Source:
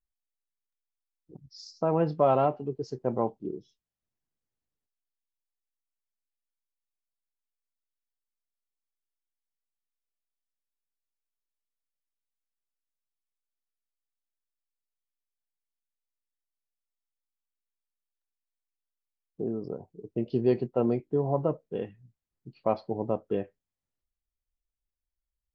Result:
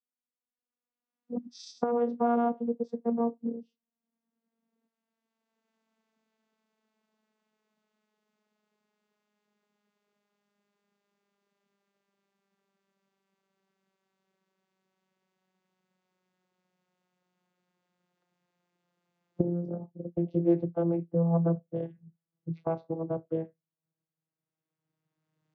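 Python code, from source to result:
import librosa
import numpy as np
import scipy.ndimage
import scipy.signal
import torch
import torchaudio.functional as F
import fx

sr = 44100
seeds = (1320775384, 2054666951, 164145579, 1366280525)

y = fx.vocoder_glide(x, sr, note=59, semitones=-8)
y = fx.recorder_agc(y, sr, target_db=-23.5, rise_db_per_s=13.0, max_gain_db=30)
y = fx.high_shelf(y, sr, hz=3400.0, db=-10.5)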